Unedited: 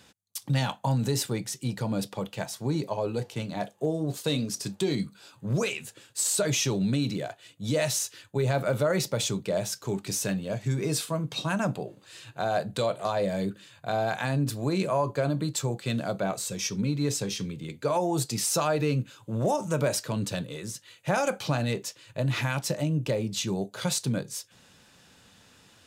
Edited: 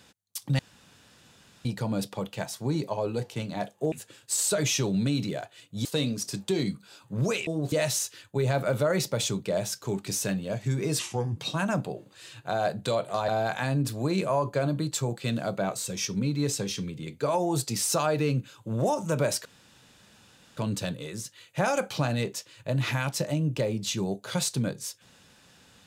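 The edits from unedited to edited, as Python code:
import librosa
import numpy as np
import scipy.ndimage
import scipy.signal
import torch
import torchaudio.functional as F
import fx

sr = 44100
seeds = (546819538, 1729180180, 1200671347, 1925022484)

y = fx.edit(x, sr, fx.room_tone_fill(start_s=0.59, length_s=1.06),
    fx.swap(start_s=3.92, length_s=0.25, other_s=5.79, other_length_s=1.93),
    fx.speed_span(start_s=10.99, length_s=0.29, speed=0.76),
    fx.cut(start_s=13.19, length_s=0.71),
    fx.insert_room_tone(at_s=20.07, length_s=1.12), tone=tone)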